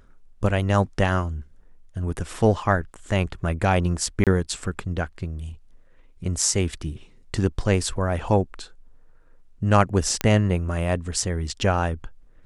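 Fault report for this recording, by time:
4.24–4.27 s: dropout 27 ms
10.21 s: pop -7 dBFS

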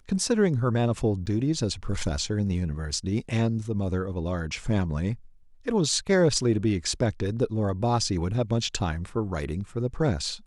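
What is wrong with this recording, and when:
1.26–1.27 s: dropout 9.3 ms

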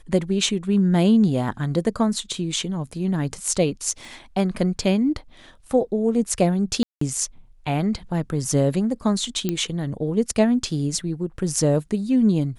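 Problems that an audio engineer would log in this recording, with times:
4.05 s: pop
6.83–7.01 s: dropout 184 ms
9.49 s: pop -10 dBFS

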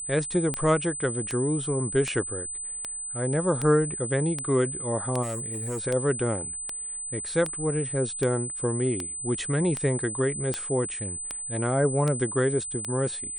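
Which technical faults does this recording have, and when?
tick 78 rpm -14 dBFS
whine 8.1 kHz -32 dBFS
5.22–5.84 s: clipped -27.5 dBFS

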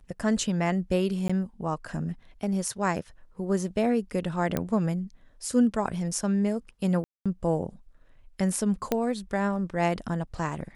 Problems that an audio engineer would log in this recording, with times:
1.28–1.29 s: dropout 15 ms
4.57 s: pop -13 dBFS
7.04–7.26 s: dropout 216 ms
8.92 s: pop -11 dBFS

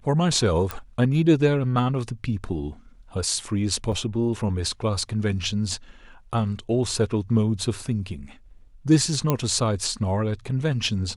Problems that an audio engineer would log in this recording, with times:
0.71 s: pop
3.92–3.93 s: dropout 5.5 ms
9.30 s: pop -8 dBFS

